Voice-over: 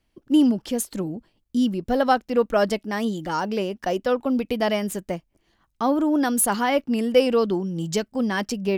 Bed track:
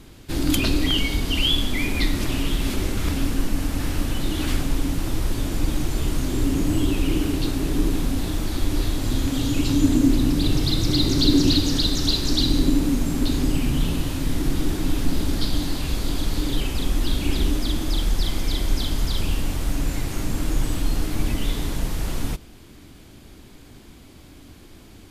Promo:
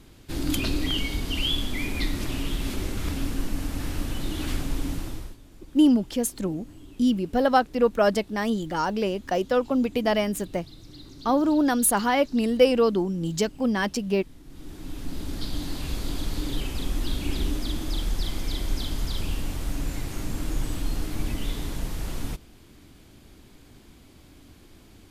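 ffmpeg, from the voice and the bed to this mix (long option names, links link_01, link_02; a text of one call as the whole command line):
ffmpeg -i stem1.wav -i stem2.wav -filter_complex "[0:a]adelay=5450,volume=-0.5dB[link_01];[1:a]volume=14.5dB,afade=type=out:start_time=4.93:duration=0.44:silence=0.1,afade=type=in:start_time=14.46:duration=1.42:silence=0.1[link_02];[link_01][link_02]amix=inputs=2:normalize=0" out.wav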